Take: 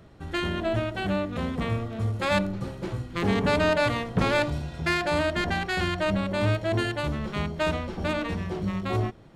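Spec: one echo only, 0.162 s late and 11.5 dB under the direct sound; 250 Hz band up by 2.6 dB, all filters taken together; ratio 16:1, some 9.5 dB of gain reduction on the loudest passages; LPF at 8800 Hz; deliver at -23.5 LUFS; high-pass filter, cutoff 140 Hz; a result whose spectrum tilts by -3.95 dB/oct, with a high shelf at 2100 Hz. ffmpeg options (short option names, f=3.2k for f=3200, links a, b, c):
-af "highpass=140,lowpass=8.8k,equalizer=f=250:t=o:g=4.5,highshelf=f=2.1k:g=6.5,acompressor=threshold=-26dB:ratio=16,aecho=1:1:162:0.266,volume=7.5dB"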